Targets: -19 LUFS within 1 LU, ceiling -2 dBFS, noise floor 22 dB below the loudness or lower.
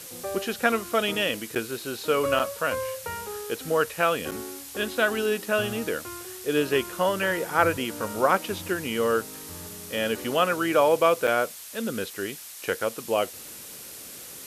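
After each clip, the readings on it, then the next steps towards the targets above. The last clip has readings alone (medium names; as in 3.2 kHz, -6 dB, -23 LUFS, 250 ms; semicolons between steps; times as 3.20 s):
dropouts 4; longest dropout 6.9 ms; noise floor -42 dBFS; noise floor target -48 dBFS; loudness -26.0 LUFS; peak level -5.0 dBFS; loudness target -19.0 LUFS
-> interpolate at 1.55/2.39/4.31/11.27 s, 6.9 ms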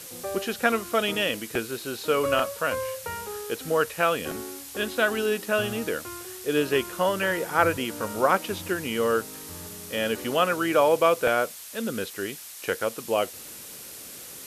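dropouts 0; noise floor -42 dBFS; noise floor target -48 dBFS
-> noise print and reduce 6 dB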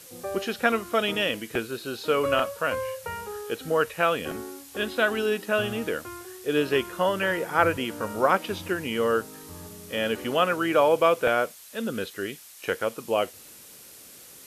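noise floor -48 dBFS; noise floor target -49 dBFS
-> noise print and reduce 6 dB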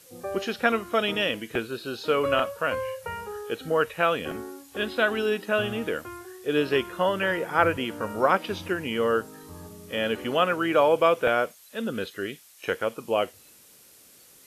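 noise floor -54 dBFS; loudness -26.5 LUFS; peak level -5.0 dBFS; loudness target -19.0 LUFS
-> trim +7.5 dB; peak limiter -2 dBFS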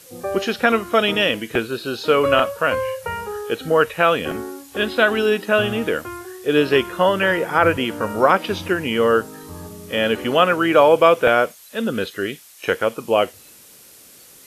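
loudness -19.0 LUFS; peak level -2.0 dBFS; noise floor -46 dBFS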